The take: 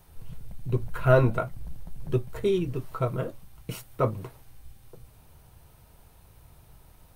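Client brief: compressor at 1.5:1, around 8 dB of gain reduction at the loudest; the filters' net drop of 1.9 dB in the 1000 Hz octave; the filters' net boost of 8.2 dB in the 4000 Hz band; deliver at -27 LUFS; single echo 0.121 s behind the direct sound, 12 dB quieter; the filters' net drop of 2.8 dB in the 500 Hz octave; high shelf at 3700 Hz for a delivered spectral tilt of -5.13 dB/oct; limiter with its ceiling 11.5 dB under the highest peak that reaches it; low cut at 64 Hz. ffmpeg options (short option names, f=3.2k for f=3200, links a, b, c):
-af "highpass=64,equalizer=f=500:t=o:g=-3,equalizer=f=1k:t=o:g=-3.5,highshelf=f=3.7k:g=6,equalizer=f=4k:t=o:g=7,acompressor=threshold=-38dB:ratio=1.5,alimiter=level_in=4.5dB:limit=-24dB:level=0:latency=1,volume=-4.5dB,aecho=1:1:121:0.251,volume=13.5dB"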